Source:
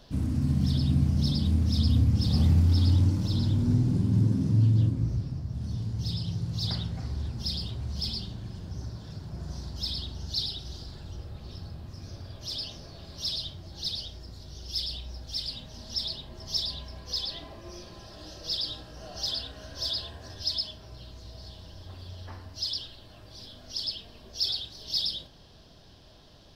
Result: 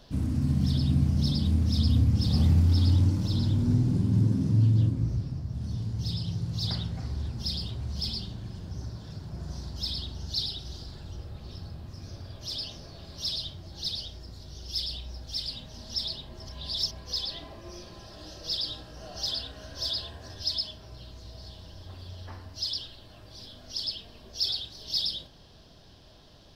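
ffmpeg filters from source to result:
-filter_complex "[0:a]asplit=3[a][b][c];[a]atrim=end=16.492[d];[b]atrim=start=16.488:end=16.912,asetpts=PTS-STARTPTS,areverse[e];[c]atrim=start=16.908[f];[d][e]acrossfade=d=0.004:c1=hsin:c2=hsin[g];[g][f]acrossfade=d=0.004:c1=hsin:c2=hsin"

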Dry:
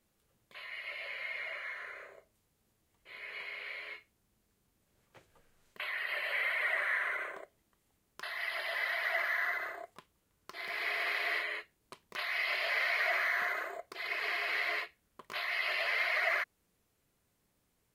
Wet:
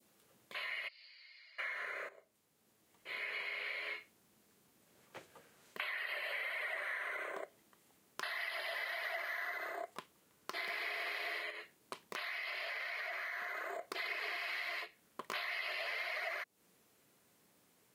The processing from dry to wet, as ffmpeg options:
-filter_complex "[0:a]asplit=3[a][b][c];[a]afade=t=out:st=0.87:d=0.02[d];[b]bandpass=f=4.7k:t=q:w=15,afade=t=in:st=0.87:d=0.02,afade=t=out:st=1.58:d=0.02[e];[c]afade=t=in:st=1.58:d=0.02[f];[d][e][f]amix=inputs=3:normalize=0,asettb=1/sr,asplit=3[g][h][i];[g]atrim=end=11.504[j];[h]atrim=start=11.5:end=13.81,asetpts=PTS-STARTPTS,afade=t=in:d=0.004:c=qsin,afade=t=out:st=2.306:d=0.004:c=qsin,acompressor=threshold=-43dB:ratio=6:attack=3.2:release=140:knee=1:detection=peak[k];[i]atrim=start=13.806[l];[j][k]acrossfade=d=0.004:c1=hsin:c2=qsin[m];[m][l]acrossfade=d=0.004:c1=qsin:c2=hsin,asettb=1/sr,asplit=3[n][o][p];[n]atrim=end=14.384[q];[o]atrim=start=14.38:end=14.82,asetpts=PTS-STARTPTS,afade=t=in:d=0.004:c=qsin,afade=t=out:st=0.436:d=0.004:c=qsin,equalizer=f=440:t=o:w=0.77:g=-11[r];[p]atrim=start=14.816[s];[q][r]acrossfade=d=0.004:c1=hsin:c2=qsin[t];[t][s]acrossfade=d=0.004:c1=qsin:c2=hsin,asplit=2[u][v];[u]atrim=end=2.09,asetpts=PTS-STARTPTS,afade=t=out:st=2.086:d=0.004:c=hsin:silence=0.199526[w];[v]atrim=start=2.09,asetpts=PTS-STARTPTS,afade=t=in:d=1.04:silence=0.199526[x];[w][x]concat=n=2:v=0:a=1,highpass=180,adynamicequalizer=threshold=0.00631:dfrequency=1600:dqfactor=0.86:tfrequency=1600:tqfactor=0.86:attack=5:release=100:ratio=0.375:range=3:mode=cutabove:tftype=bell,acompressor=threshold=-46dB:ratio=6,volume=7.5dB"

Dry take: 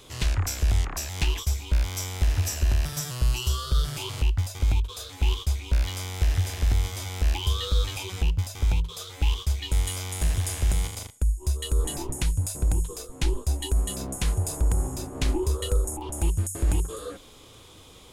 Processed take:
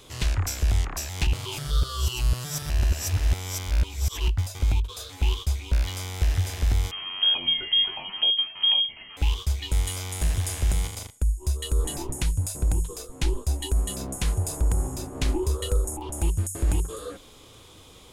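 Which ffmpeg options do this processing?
-filter_complex "[0:a]asettb=1/sr,asplit=3[a][b][c];[a]atrim=end=6.914[d];[b]atrim=start=6.91:end=9.17,asetpts=PTS-STARTPTS,afade=t=in:d=0.004:c=qsin,afade=t=out:st=2.256:d=0.004:c=qsin,lowpass=f=2.8k:t=q:w=0.5098,lowpass=f=2.8k:t=q:w=0.6013,lowpass=f=2.8k:t=q:w=0.9,lowpass=f=2.8k:t=q:w=2.563,afreqshift=-3300[e];[c]atrim=start=9.166[f];[d][e]acrossfade=d=0.004:c1=hsin:c2=qsin[g];[g][f]acrossfade=d=0.004:c1=qsin:c2=hsin,asplit=3[h][i][j];[h]atrim=end=1.272[k];[i]atrim=start=1.268:end=4.282,asetpts=PTS-STARTPTS,areverse[l];[j]atrim=start=4.278[m];[k][l]acrossfade=d=0.004:c1=hsin:c2=hsin[n];[n][m]acrossfade=d=0.004:c1=hsin:c2=hsin"

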